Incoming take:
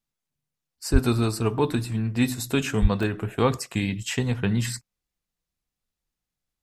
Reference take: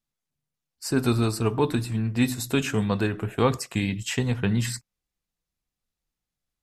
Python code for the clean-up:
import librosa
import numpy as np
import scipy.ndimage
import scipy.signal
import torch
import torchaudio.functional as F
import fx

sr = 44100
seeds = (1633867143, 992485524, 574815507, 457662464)

y = fx.highpass(x, sr, hz=140.0, slope=24, at=(0.92, 1.04), fade=0.02)
y = fx.highpass(y, sr, hz=140.0, slope=24, at=(2.81, 2.93), fade=0.02)
y = fx.fix_interpolate(y, sr, at_s=(3.03,), length_ms=1.9)